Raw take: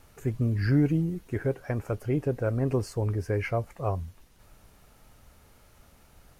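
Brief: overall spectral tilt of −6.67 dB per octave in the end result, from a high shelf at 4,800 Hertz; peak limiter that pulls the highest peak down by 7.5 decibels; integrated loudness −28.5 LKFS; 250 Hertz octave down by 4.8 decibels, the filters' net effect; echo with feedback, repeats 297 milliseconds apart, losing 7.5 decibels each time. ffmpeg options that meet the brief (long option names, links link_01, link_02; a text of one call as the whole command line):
ffmpeg -i in.wav -af "equalizer=frequency=250:width_type=o:gain=-7,highshelf=frequency=4800:gain=-5,alimiter=limit=-24dB:level=0:latency=1,aecho=1:1:297|594|891|1188|1485:0.422|0.177|0.0744|0.0312|0.0131,volume=5dB" out.wav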